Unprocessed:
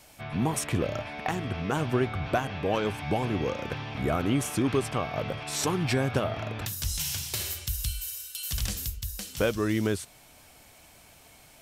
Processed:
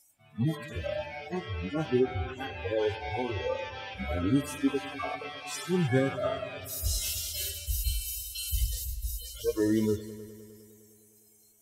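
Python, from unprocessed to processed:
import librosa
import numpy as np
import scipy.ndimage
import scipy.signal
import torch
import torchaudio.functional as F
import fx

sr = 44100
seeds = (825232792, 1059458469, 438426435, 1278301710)

y = fx.hpss_only(x, sr, part='harmonic')
y = fx.noise_reduce_blind(y, sr, reduce_db=24)
y = fx.echo_heads(y, sr, ms=102, heads='all three', feedback_pct=57, wet_db=-22)
y = F.gain(torch.from_numpy(y), 3.0).numpy()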